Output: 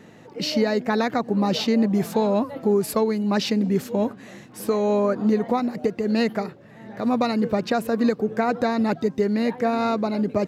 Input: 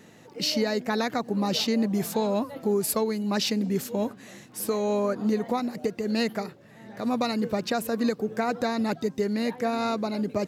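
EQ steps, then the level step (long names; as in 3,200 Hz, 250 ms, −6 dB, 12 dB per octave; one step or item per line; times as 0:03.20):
high-shelf EQ 4,100 Hz −11 dB
+5.0 dB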